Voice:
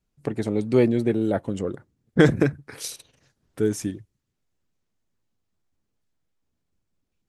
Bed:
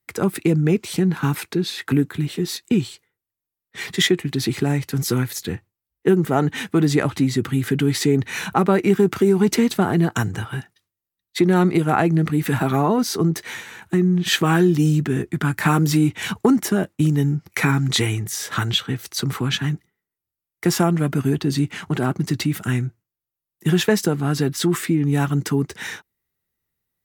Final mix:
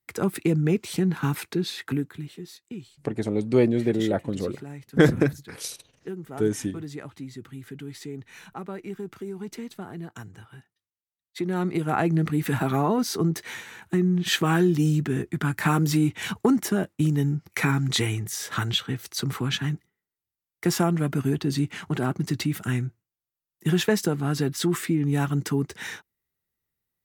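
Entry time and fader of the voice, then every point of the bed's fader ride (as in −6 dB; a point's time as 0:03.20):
2.80 s, −1.0 dB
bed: 0:01.72 −4.5 dB
0:02.60 −19 dB
0:10.75 −19 dB
0:12.10 −4.5 dB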